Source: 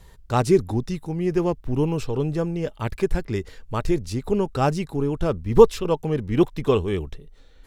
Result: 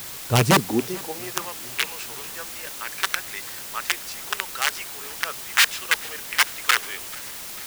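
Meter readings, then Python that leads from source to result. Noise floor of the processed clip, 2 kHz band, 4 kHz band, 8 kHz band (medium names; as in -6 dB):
-36 dBFS, +14.5 dB, +14.0 dB, +15.0 dB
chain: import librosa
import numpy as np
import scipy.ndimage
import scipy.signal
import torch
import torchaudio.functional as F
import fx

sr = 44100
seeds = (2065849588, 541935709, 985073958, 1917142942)

y = fx.rattle_buzz(x, sr, strikes_db=-20.0, level_db=-16.0)
y = fx.peak_eq(y, sr, hz=470.0, db=3.0, octaves=0.58)
y = (np.mod(10.0 ** (10.5 / 20.0) * y + 1.0, 2.0) - 1.0) / 10.0 ** (10.5 / 20.0)
y = fx.filter_sweep_highpass(y, sr, from_hz=110.0, to_hz=1600.0, start_s=0.41, end_s=1.49, q=1.7)
y = fx.quant_dither(y, sr, seeds[0], bits=6, dither='triangular')
y = fx.echo_feedback(y, sr, ms=440, feedback_pct=60, wet_db=-23.0)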